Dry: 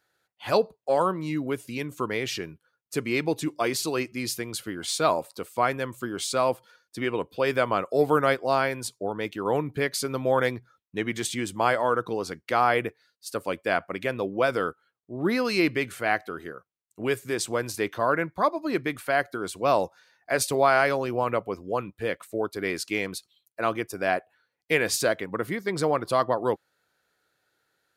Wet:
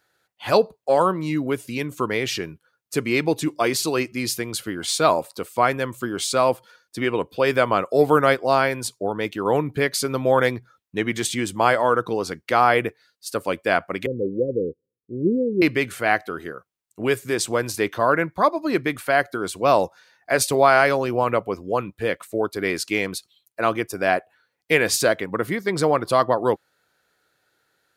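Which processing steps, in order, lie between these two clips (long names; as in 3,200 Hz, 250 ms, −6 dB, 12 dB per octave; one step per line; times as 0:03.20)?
0:14.06–0:15.62: Butterworth low-pass 530 Hz 96 dB per octave
level +5 dB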